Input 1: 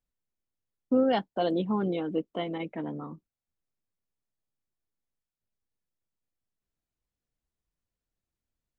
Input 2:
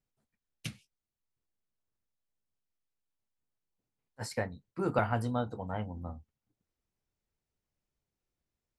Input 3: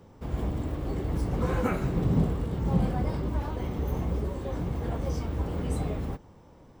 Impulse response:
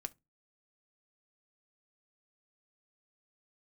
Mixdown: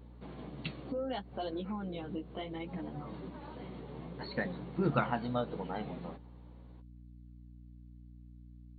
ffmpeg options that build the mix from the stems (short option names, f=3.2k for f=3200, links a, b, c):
-filter_complex "[0:a]volume=-0.5dB,asplit=2[a][b];[1:a]lowshelf=f=160:g=10,aphaser=in_gain=1:out_gain=1:delay=2.6:decay=0.42:speed=0.43:type=triangular,volume=-3dB[c];[2:a]volume=-4.5dB[d];[b]apad=whole_len=299893[e];[d][e]sidechaincompress=threshold=-38dB:ratio=10:attack=16:release=337[f];[a][f]amix=inputs=2:normalize=0,flanger=delay=7.7:depth=8.5:regen=-16:speed=0.67:shape=triangular,acompressor=threshold=-41dB:ratio=2,volume=0dB[g];[c][g]amix=inputs=2:normalize=0,afftfilt=real='re*between(b*sr/4096,120,4500)':imag='im*between(b*sr/4096,120,4500)':win_size=4096:overlap=0.75,crystalizer=i=2:c=0,aeval=exprs='val(0)+0.00282*(sin(2*PI*60*n/s)+sin(2*PI*2*60*n/s)/2+sin(2*PI*3*60*n/s)/3+sin(2*PI*4*60*n/s)/4+sin(2*PI*5*60*n/s)/5)':c=same"